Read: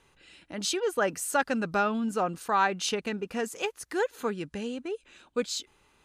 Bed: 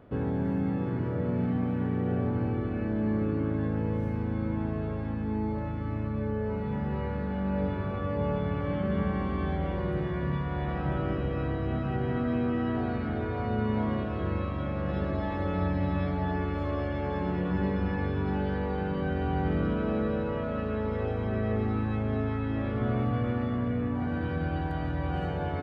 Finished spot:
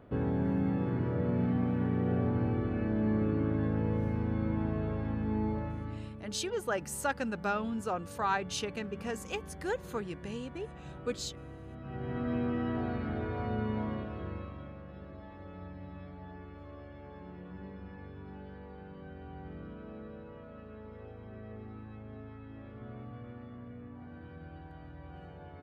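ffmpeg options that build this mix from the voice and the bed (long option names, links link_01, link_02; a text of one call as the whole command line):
ffmpeg -i stem1.wav -i stem2.wav -filter_complex "[0:a]adelay=5700,volume=-6dB[link_01];[1:a]volume=11dB,afade=type=out:start_time=5.48:duration=0.72:silence=0.177828,afade=type=in:start_time=11.77:duration=0.56:silence=0.237137,afade=type=out:start_time=13.45:duration=1.42:silence=0.211349[link_02];[link_01][link_02]amix=inputs=2:normalize=0" out.wav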